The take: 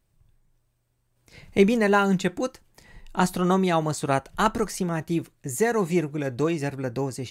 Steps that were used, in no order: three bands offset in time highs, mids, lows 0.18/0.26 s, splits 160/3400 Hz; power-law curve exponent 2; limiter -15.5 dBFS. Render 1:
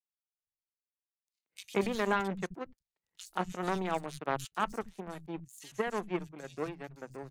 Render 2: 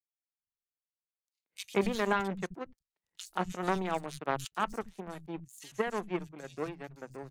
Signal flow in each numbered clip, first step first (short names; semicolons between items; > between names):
power-law curve > limiter > three bands offset in time; power-law curve > three bands offset in time > limiter